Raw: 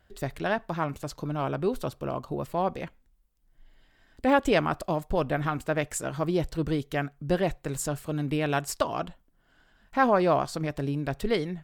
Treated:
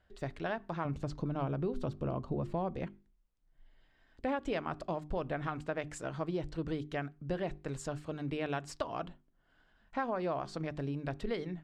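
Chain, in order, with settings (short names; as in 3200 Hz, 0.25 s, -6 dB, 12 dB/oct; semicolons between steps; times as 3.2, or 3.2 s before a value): 0.85–2.85 low shelf 390 Hz +10.5 dB; notches 50/100/150/200/250/300/350/400 Hz; compressor 6:1, threshold -25 dBFS, peak gain reduction 9 dB; air absorption 92 m; gain -5.5 dB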